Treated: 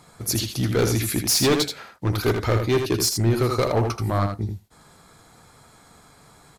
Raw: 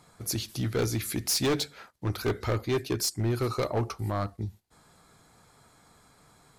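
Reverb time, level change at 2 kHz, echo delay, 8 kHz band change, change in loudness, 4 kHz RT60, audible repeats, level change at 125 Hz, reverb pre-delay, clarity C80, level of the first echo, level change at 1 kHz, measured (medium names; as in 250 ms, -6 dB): no reverb, +7.5 dB, 80 ms, +7.5 dB, +7.5 dB, no reverb, 1, +7.5 dB, no reverb, no reverb, -6.0 dB, +7.5 dB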